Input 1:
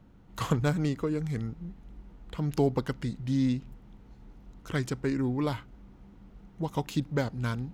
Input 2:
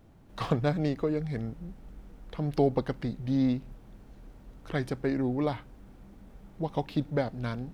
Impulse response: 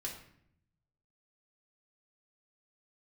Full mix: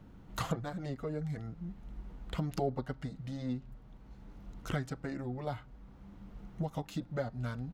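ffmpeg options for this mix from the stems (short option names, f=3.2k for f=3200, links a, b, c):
-filter_complex "[0:a]acompressor=threshold=-32dB:ratio=6,volume=2dB[a];[1:a]lowpass=f=4.2k:t=q:w=2.5,highshelf=f=2k:t=q:w=1.5:g=-8,asplit=2[b][c];[c]adelay=5.1,afreqshift=1.1[d];[b][d]amix=inputs=2:normalize=1,adelay=1.5,volume=-6dB,asplit=2[e][f];[f]apad=whole_len=341049[g];[a][g]sidechaincompress=threshold=-42dB:ratio=8:attack=49:release=1070[h];[h][e]amix=inputs=2:normalize=0"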